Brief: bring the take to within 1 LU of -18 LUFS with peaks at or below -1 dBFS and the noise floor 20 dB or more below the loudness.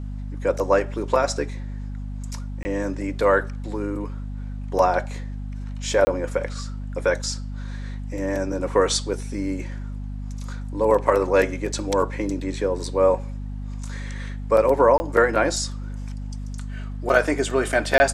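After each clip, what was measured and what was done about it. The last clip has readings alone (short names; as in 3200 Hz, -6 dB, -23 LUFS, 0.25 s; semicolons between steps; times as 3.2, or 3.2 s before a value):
dropouts 4; longest dropout 20 ms; hum 50 Hz; harmonics up to 250 Hz; hum level -28 dBFS; loudness -23.0 LUFS; peak -3.0 dBFS; loudness target -18.0 LUFS
-> interpolate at 2.63/6.05/14.98/17.98, 20 ms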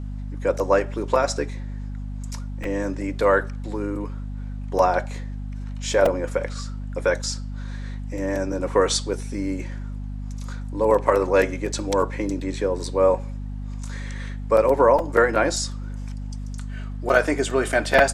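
dropouts 0; hum 50 Hz; harmonics up to 250 Hz; hum level -29 dBFS
-> notches 50/100/150/200/250 Hz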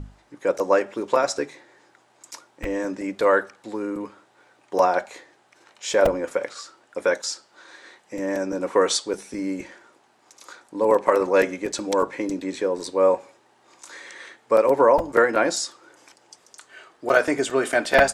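hum none; loudness -22.5 LUFS; peak -1.5 dBFS; loudness target -18.0 LUFS
-> gain +4.5 dB; limiter -1 dBFS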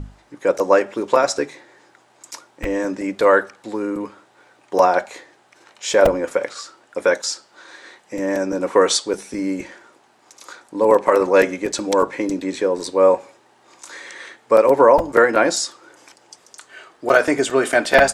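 loudness -18.5 LUFS; peak -1.0 dBFS; noise floor -56 dBFS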